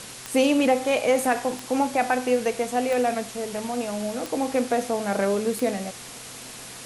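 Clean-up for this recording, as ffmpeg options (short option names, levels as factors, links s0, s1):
-af "adeclick=t=4,bandreject=f=125.7:t=h:w=4,bandreject=f=251.4:t=h:w=4,bandreject=f=377.1:t=h:w=4,bandreject=f=502.8:t=h:w=4,afwtdn=0.013"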